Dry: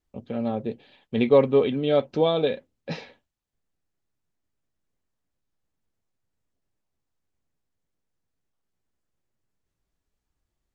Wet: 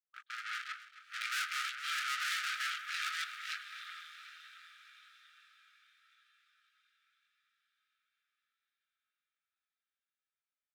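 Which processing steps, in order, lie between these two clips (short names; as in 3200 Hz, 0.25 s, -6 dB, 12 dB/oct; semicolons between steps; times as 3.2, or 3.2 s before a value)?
reverse delay 0.46 s, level -2 dB; high shelf 3400 Hz -10.5 dB; sample leveller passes 3; diffused feedback echo 0.782 s, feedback 44%, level -13.5 dB; chorus voices 6, 0.34 Hz, delay 20 ms, depth 4.3 ms; tube stage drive 28 dB, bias 0.8; brick-wall FIR high-pass 1200 Hz; echo 0.268 s -15 dB; gain +2 dB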